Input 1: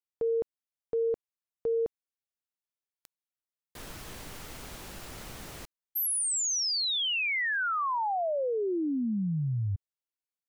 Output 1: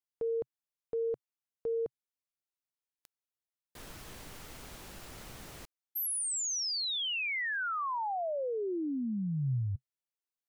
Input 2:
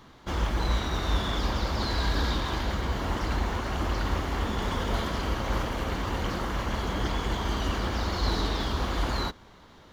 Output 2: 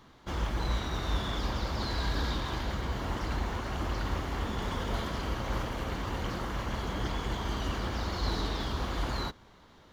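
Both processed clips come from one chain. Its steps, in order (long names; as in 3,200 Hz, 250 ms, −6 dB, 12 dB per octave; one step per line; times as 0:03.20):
dynamic equaliser 130 Hz, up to +4 dB, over −52 dBFS, Q 3.6
level −4.5 dB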